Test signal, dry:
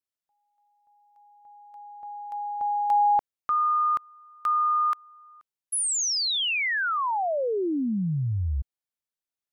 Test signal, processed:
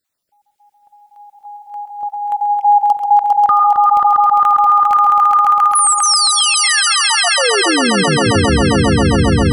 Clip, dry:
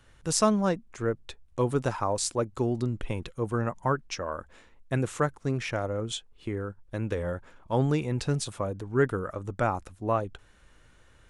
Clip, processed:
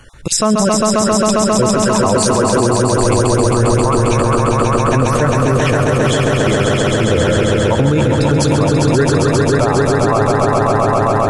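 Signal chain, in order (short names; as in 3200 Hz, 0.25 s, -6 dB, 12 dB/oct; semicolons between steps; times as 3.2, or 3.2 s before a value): random spectral dropouts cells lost 32%; swelling echo 0.134 s, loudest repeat 5, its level -5 dB; maximiser +21 dB; gain -3.5 dB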